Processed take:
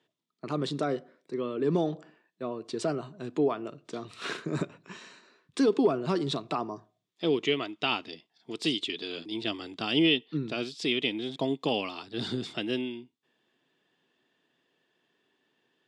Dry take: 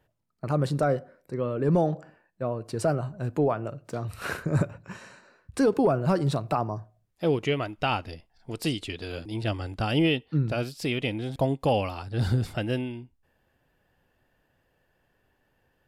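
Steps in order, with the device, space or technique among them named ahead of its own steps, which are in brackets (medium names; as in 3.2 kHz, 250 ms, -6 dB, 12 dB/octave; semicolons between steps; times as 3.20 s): television speaker (cabinet simulation 190–7700 Hz, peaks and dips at 200 Hz -4 dB, 390 Hz +3 dB, 550 Hz -10 dB, 810 Hz -7 dB, 1.5 kHz -6 dB, 3.5 kHz +10 dB)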